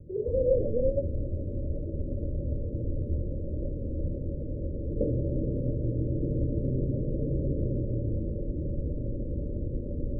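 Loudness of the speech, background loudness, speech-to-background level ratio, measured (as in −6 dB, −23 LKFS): −29.0 LKFS, −32.5 LKFS, 3.5 dB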